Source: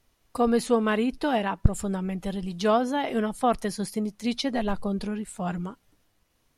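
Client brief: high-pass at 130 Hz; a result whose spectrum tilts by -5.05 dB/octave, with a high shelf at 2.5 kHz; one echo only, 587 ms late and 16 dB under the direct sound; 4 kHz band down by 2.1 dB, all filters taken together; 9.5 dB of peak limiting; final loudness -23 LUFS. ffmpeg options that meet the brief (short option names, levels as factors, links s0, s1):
-af "highpass=130,highshelf=f=2500:g=4,equalizer=f=4000:t=o:g=-6.5,alimiter=limit=0.126:level=0:latency=1,aecho=1:1:587:0.158,volume=2"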